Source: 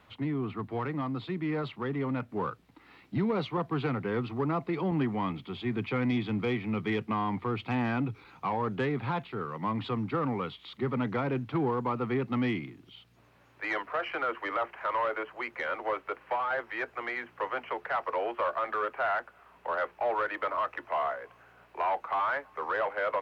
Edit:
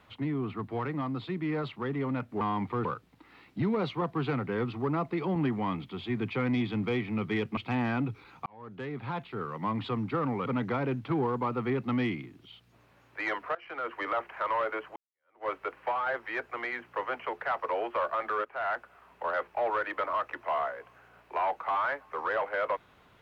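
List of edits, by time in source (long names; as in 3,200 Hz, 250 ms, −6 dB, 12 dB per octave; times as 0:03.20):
0:07.13–0:07.57: move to 0:02.41
0:08.46–0:09.45: fade in
0:10.46–0:10.90: remove
0:13.99–0:14.45: fade in, from −21.5 dB
0:15.40–0:15.92: fade in exponential
0:18.89–0:19.19: fade in, from −14 dB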